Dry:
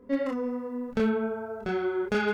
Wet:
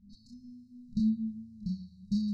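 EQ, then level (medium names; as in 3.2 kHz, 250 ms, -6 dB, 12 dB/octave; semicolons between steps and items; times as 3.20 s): brick-wall FIR band-stop 220–3800 Hz; low-pass 5.1 kHz 12 dB/octave; peaking EQ 210 Hz +6 dB 0.57 oct; 0.0 dB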